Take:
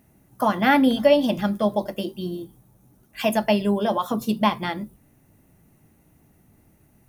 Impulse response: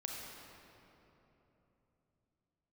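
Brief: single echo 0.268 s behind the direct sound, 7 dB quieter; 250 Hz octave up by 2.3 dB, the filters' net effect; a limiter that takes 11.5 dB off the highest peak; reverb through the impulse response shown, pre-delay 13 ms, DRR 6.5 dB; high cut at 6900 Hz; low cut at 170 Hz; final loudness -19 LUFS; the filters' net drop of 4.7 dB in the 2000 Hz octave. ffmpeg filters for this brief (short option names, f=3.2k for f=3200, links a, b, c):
-filter_complex "[0:a]highpass=170,lowpass=6.9k,equalizer=f=250:t=o:g=4,equalizer=f=2k:t=o:g=-6,alimiter=limit=-17dB:level=0:latency=1,aecho=1:1:268:0.447,asplit=2[a][b];[1:a]atrim=start_sample=2205,adelay=13[c];[b][c]afir=irnorm=-1:irlink=0,volume=-6.5dB[d];[a][d]amix=inputs=2:normalize=0,volume=7dB"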